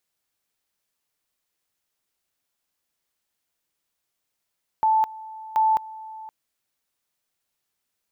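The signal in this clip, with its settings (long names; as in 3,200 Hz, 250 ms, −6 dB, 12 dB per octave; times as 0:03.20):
tone at two levels in turn 877 Hz −16 dBFS, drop 19.5 dB, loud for 0.21 s, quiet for 0.52 s, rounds 2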